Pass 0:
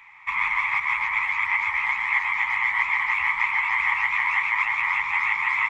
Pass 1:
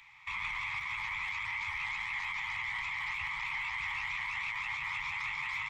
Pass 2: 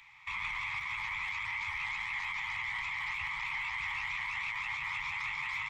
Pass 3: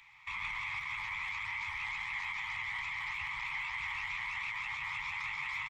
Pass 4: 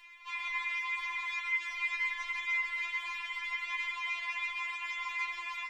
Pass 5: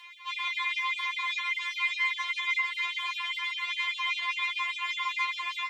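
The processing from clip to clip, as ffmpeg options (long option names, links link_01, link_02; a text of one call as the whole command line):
ffmpeg -i in.wav -filter_complex "[0:a]equalizer=frequency=125:width_type=o:width=1:gain=5,equalizer=frequency=250:width_type=o:width=1:gain=-10,equalizer=frequency=500:width_type=o:width=1:gain=-6,equalizer=frequency=1000:width_type=o:width=1:gain=-8,equalizer=frequency=2000:width_type=o:width=1:gain=-9,equalizer=frequency=4000:width_type=o:width=1:gain=6,acrossover=split=240[link_01][link_02];[link_02]alimiter=level_in=4.5dB:limit=-24dB:level=0:latency=1:release=19,volume=-4.5dB[link_03];[link_01][link_03]amix=inputs=2:normalize=0" out.wav
ffmpeg -i in.wav -af anull out.wav
ffmpeg -i in.wav -af "aecho=1:1:131:0.251,volume=-2dB" out.wav
ffmpeg -i in.wav -filter_complex "[0:a]asplit=2[link_01][link_02];[link_02]alimiter=level_in=11dB:limit=-24dB:level=0:latency=1:release=20,volume=-11dB,volume=2dB[link_03];[link_01][link_03]amix=inputs=2:normalize=0,afftfilt=real='re*4*eq(mod(b,16),0)':imag='im*4*eq(mod(b,16),0)':win_size=2048:overlap=0.75" out.wav
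ffmpeg -i in.wav -af "superequalizer=9b=1.58:13b=2,afreqshift=13,afftfilt=real='re*gte(b*sr/1024,240*pow(2600/240,0.5+0.5*sin(2*PI*5*pts/sr)))':imag='im*gte(b*sr/1024,240*pow(2600/240,0.5+0.5*sin(2*PI*5*pts/sr)))':win_size=1024:overlap=0.75,volume=5dB" out.wav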